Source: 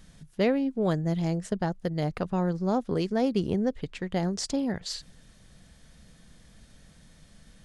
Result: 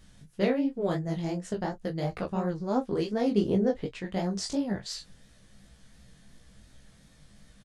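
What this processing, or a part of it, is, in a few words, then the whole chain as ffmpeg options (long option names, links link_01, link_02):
double-tracked vocal: -filter_complex "[0:a]asettb=1/sr,asplit=3[link_01][link_02][link_03];[link_01]atrim=end=3.294[link_04];[link_02]atrim=start=3.29:end=3.89,asetpts=PTS-STARTPTS,afade=type=in:duration=0.004:curve=qsin,afade=type=out:start_time=0.596:duration=0.004:curve=qsin,equalizer=frequency=470:width=0.7:gain=5.5[link_05];[link_03]atrim=start=3.886[link_06];[link_04][link_05]acrossfade=duration=0.004:curve1=hsin:curve2=qsin[link_07];[link_07][link_06]acrossfade=duration=0.004:curve1=qsin:curve2=hsin,asplit=2[link_08][link_09];[link_09]adelay=25,volume=-12dB[link_10];[link_08][link_10]amix=inputs=2:normalize=0,flanger=delay=16.5:depth=7.5:speed=2.8,asplit=2[link_11][link_12];[link_12]adelay=15,volume=-6.5dB[link_13];[link_11][link_13]amix=inputs=2:normalize=0"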